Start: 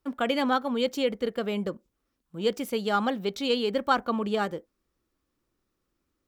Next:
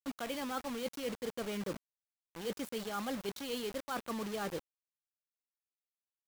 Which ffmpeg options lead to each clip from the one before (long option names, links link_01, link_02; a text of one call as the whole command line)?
ffmpeg -i in.wav -af "areverse,acompressor=threshold=-33dB:ratio=16,areverse,acrusher=bits=6:mix=0:aa=0.000001,volume=-2dB" out.wav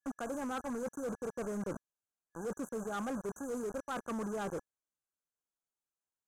ffmpeg -i in.wav -af "afftfilt=real='re*(1-between(b*sr/4096,1700,5900))':imag='im*(1-between(b*sr/4096,1700,5900))':win_size=4096:overlap=0.75,asoftclip=type=hard:threshold=-36dB,lowpass=8700,volume=2.5dB" out.wav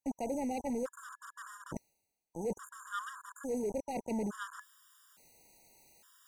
ffmpeg -i in.wav -af "areverse,acompressor=mode=upward:threshold=-40dB:ratio=2.5,areverse,afftfilt=real='re*gt(sin(2*PI*0.58*pts/sr)*(1-2*mod(floor(b*sr/1024/960),2)),0)':imag='im*gt(sin(2*PI*0.58*pts/sr)*(1-2*mod(floor(b*sr/1024/960),2)),0)':win_size=1024:overlap=0.75,volume=3.5dB" out.wav